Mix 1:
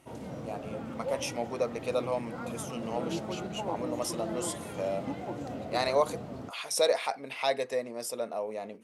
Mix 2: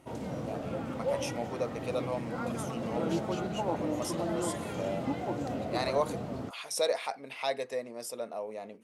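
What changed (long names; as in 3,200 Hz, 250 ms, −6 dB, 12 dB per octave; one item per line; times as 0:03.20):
speech −3.5 dB
background +3.5 dB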